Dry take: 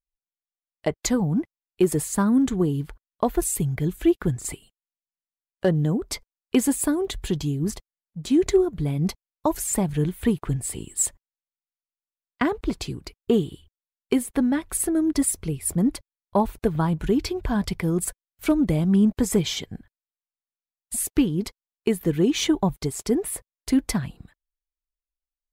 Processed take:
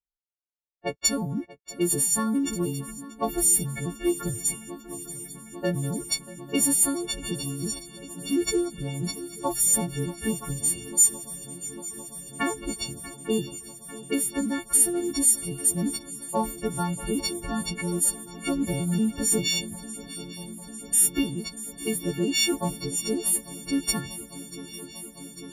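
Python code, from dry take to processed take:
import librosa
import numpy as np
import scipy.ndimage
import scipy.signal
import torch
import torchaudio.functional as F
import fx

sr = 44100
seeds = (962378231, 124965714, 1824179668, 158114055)

y = fx.freq_snap(x, sr, grid_st=4)
y = fx.env_lowpass(y, sr, base_hz=800.0, full_db=-18.0)
y = fx.echo_swing(y, sr, ms=848, ratio=3, feedback_pct=79, wet_db=-18)
y = y * librosa.db_to_amplitude(-6.0)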